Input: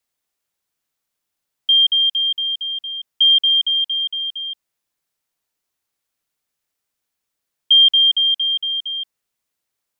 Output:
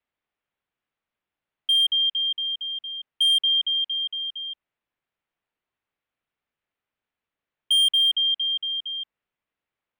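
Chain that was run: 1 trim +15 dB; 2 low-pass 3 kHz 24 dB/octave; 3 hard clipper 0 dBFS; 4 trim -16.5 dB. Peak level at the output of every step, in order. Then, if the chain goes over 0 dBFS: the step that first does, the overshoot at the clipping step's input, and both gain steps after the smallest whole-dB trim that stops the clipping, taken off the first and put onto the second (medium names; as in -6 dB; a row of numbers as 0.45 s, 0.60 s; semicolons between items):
+8.0 dBFS, +4.0 dBFS, 0.0 dBFS, -16.5 dBFS; step 1, 4.0 dB; step 1 +11 dB, step 4 -12.5 dB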